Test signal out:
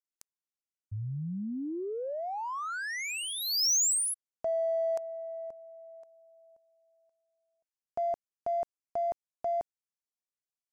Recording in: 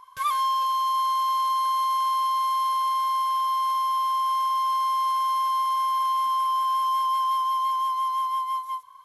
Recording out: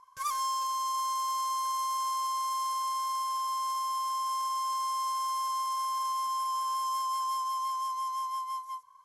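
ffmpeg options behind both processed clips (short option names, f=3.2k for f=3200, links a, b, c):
-af "adynamicsmooth=sensitivity=2:basefreq=3.2k,aexciter=amount=9.1:drive=6.5:freq=5.2k,volume=-7.5dB"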